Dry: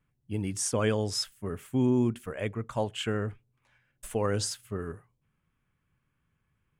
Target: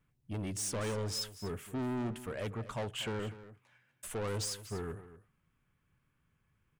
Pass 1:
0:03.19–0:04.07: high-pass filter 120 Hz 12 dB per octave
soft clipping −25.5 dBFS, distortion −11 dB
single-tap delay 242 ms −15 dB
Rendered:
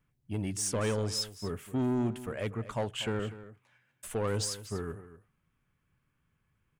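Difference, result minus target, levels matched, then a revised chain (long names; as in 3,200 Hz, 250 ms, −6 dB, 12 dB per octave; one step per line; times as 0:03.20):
soft clipping: distortion −6 dB
0:03.19–0:04.07: high-pass filter 120 Hz 12 dB per octave
soft clipping −33.5 dBFS, distortion −6 dB
single-tap delay 242 ms −15 dB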